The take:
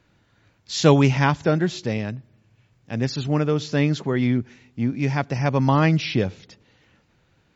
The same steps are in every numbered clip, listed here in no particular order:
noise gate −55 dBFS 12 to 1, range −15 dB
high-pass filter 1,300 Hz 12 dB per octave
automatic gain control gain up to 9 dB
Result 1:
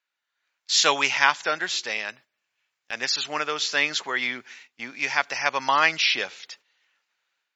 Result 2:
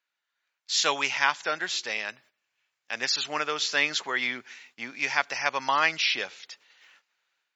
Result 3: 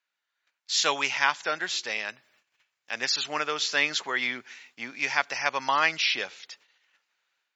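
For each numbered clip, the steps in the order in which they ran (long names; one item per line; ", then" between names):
high-pass filter, then noise gate, then automatic gain control
automatic gain control, then high-pass filter, then noise gate
noise gate, then automatic gain control, then high-pass filter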